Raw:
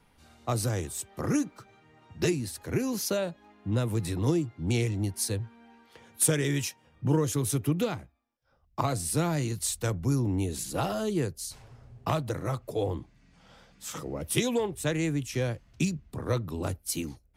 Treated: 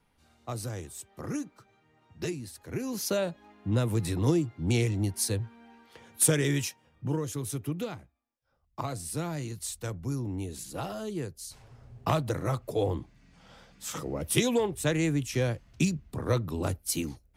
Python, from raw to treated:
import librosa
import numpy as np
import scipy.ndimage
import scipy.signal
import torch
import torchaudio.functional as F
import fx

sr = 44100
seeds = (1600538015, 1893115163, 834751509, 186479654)

y = fx.gain(x, sr, db=fx.line((2.67, -7.0), (3.19, 1.0), (6.5, 1.0), (7.19, -6.0), (11.32, -6.0), (12.0, 1.5)))